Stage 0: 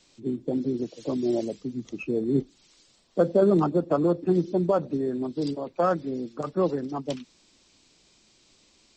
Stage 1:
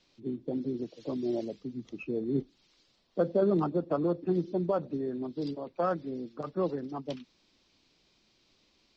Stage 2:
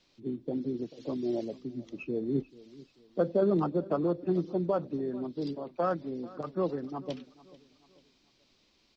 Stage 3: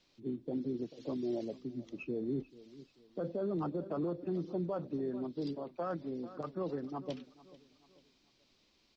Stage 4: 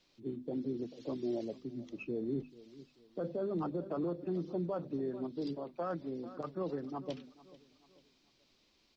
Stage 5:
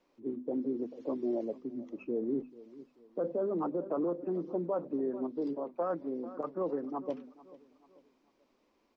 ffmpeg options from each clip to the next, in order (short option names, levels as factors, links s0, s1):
-af "lowpass=f=5300:w=0.5412,lowpass=f=5300:w=1.3066,volume=0.501"
-af "aecho=1:1:439|878|1317:0.0944|0.0378|0.0151"
-af "alimiter=level_in=1.19:limit=0.0631:level=0:latency=1:release=18,volume=0.841,volume=0.708"
-af "bandreject=f=50:t=h:w=6,bandreject=f=100:t=h:w=6,bandreject=f=150:t=h:w=6,bandreject=f=200:t=h:w=6,bandreject=f=250:t=h:w=6"
-af "equalizer=f=125:t=o:w=1:g=-6,equalizer=f=250:t=o:w=1:g=9,equalizer=f=500:t=o:w=1:g=9,equalizer=f=1000:t=o:w=1:g=10,equalizer=f=2000:t=o:w=1:g=3,equalizer=f=4000:t=o:w=1:g=-9,volume=0.473"